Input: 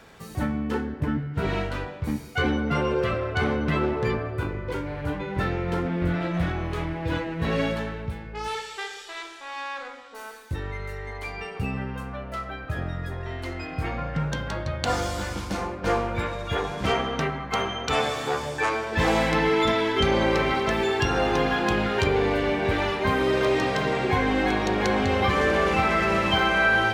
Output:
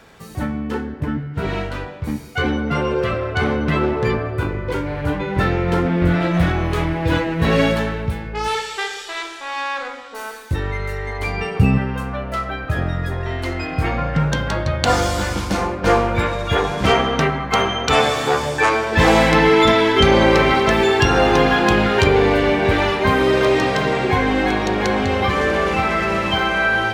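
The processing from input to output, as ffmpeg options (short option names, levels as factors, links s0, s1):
-filter_complex "[0:a]asettb=1/sr,asplit=3[s0][s1][s2];[s0]atrim=end=6.114[s3];[s1]atrim=start=6.11:end=8.29,asetpts=PTS-STARTPTS,afade=t=in:d=0.004:c=qsin,afade=t=out:st=2.176:d=0.004:c=qsin,highshelf=f=8400:g=5[s4];[s2]atrim=start=8.286[s5];[s3][s4]acrossfade=d=0.004:c1=hsin:c2=qsin[s6];[s6][s5]acrossfade=d=0.004:c1=qsin:c2=hsin,asettb=1/sr,asplit=3[s7][s8][s9];[s7]atrim=end=11.204[s10];[s8]atrim=start=11.2:end=11.78,asetpts=PTS-STARTPTS,afade=t=in:d=0.004:c=qsin,afade=t=out:st=0.576:d=0.004:c=qsin,equalizer=f=130:w=0.48:g=7.5[s11];[s9]atrim=start=11.776[s12];[s10][s11]acrossfade=d=0.004:c1=hsin:c2=qsin[s13];[s13][s12]acrossfade=d=0.004:c1=qsin:c2=hsin,dynaudnorm=f=970:g=9:m=2.11,volume=1.41"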